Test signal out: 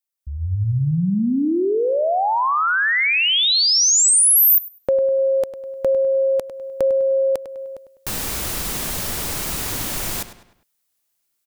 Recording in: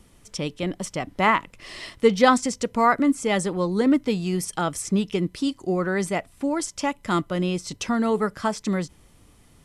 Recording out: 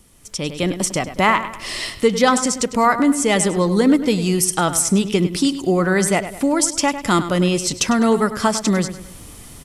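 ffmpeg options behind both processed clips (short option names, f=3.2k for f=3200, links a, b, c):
-filter_complex "[0:a]highshelf=f=5.7k:g=10.5,acompressor=threshold=-39dB:ratio=1.5,asplit=2[a][b];[b]adelay=101,lowpass=f=4.8k:p=1,volume=-11.5dB,asplit=2[c][d];[d]adelay=101,lowpass=f=4.8k:p=1,volume=0.44,asplit=2[e][f];[f]adelay=101,lowpass=f=4.8k:p=1,volume=0.44,asplit=2[g][h];[h]adelay=101,lowpass=f=4.8k:p=1,volume=0.44[i];[a][c][e][g][i]amix=inputs=5:normalize=0,dynaudnorm=f=180:g=5:m=13.5dB"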